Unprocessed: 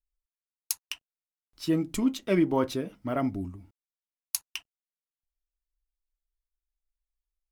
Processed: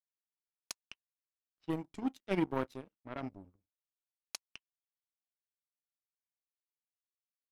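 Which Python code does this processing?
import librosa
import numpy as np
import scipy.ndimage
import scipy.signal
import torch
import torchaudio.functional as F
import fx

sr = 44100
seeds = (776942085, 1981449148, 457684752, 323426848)

y = fx.power_curve(x, sr, exponent=2.0)
y = fx.env_lowpass(y, sr, base_hz=2600.0, full_db=-34.5)
y = y * 10.0 ** (2.5 / 20.0)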